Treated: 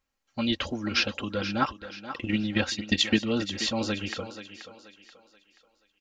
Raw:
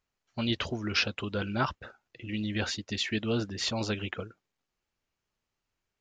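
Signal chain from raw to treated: comb 3.7 ms, depth 54%; 1.6–3.22 transient shaper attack +10 dB, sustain -4 dB; thinning echo 0.481 s, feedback 39%, high-pass 260 Hz, level -11 dB; gain +1 dB

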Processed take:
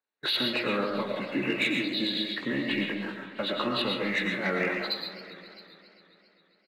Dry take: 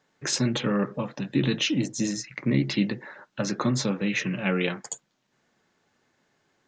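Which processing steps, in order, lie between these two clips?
nonlinear frequency compression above 1400 Hz 1.5:1; gate -43 dBFS, range -20 dB; HPF 310 Hz 12 dB/oct; high shelf 2700 Hz +10.5 dB; notch 3200 Hz, Q 6.3; in parallel at +0.5 dB: compressor, threshold -36 dBFS, peak gain reduction 16 dB; on the sum: sample leveller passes 1; on a send: echo 0.667 s -21.5 dB; on the sum: digital reverb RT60 0.66 s, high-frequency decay 0.35×, pre-delay 75 ms, DRR 2 dB; warbling echo 0.134 s, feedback 78%, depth 209 cents, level -17 dB; gain -8 dB

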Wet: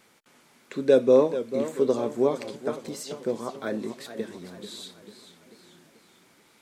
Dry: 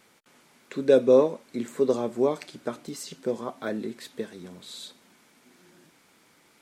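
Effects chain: warbling echo 0.44 s, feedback 48%, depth 118 cents, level -11.5 dB

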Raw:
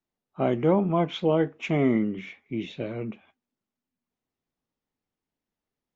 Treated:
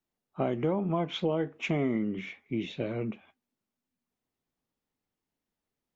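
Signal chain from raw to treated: compressor 6:1, threshold -25 dBFS, peak gain reduction 8.5 dB

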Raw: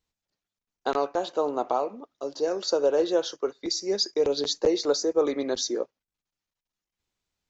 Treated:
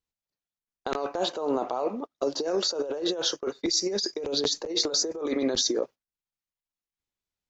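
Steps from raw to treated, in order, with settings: gate -41 dBFS, range -17 dB; negative-ratio compressor -31 dBFS, ratio -1; gain +3 dB

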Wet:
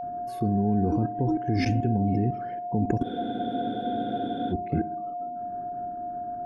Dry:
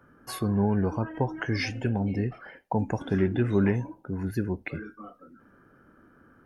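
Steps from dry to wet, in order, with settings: resonant low shelf 510 Hz +12.5 dB, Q 1.5; level quantiser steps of 24 dB; whine 710 Hz -31 dBFS; on a send: tape echo 64 ms, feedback 80%, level -15 dB, low-pass 1100 Hz; on the sum: spectral freeze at 3.06, 1.46 s

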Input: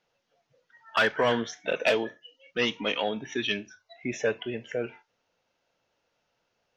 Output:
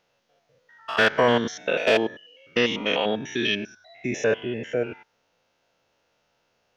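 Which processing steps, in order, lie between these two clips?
stepped spectrum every 0.1 s; gain +7 dB

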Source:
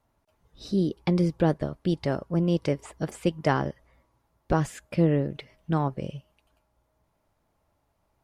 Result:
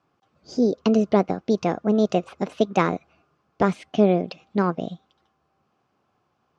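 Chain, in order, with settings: speaker cabinet 130–4500 Hz, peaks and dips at 710 Hz -4 dB, 1500 Hz -7 dB, 3100 Hz -4 dB; wide varispeed 1.25×; gain +5.5 dB

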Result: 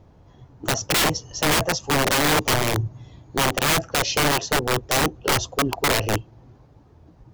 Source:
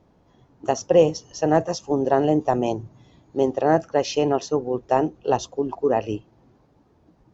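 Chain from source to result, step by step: resonant low shelf 150 Hz +6.5 dB, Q 1.5; wrapped overs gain 18.5 dB; gain +4.5 dB

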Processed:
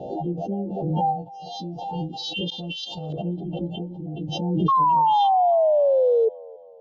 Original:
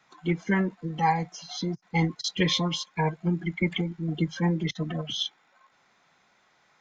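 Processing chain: frequency quantiser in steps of 2 st; FFT band-reject 880–2600 Hz; 2.5–3.22 negative-ratio compressor -31 dBFS, ratio -0.5; LFO low-pass saw up 0.32 Hz 520–3800 Hz; wow and flutter 34 cents; 4.68–6.29 painted sound fall 440–1100 Hz -14 dBFS; band-limited delay 0.277 s, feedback 46%, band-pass 990 Hz, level -20 dB; backwards sustainer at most 27 dB/s; gain -4 dB

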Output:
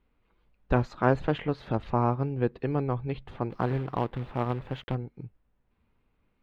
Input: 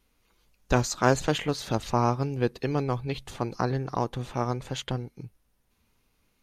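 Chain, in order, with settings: 3.5–4.95 companded quantiser 4-bit; air absorption 480 m

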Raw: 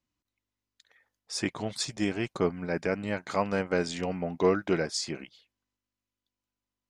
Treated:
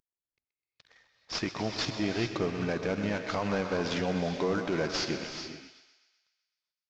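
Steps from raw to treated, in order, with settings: CVSD 32 kbps; in parallel at -2.5 dB: level quantiser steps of 19 dB; on the sum: thinning echo 0.127 s, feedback 59%, high-pass 530 Hz, level -12 dB; limiter -20.5 dBFS, peak gain reduction 9 dB; non-linear reverb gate 0.46 s rising, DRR 7 dB

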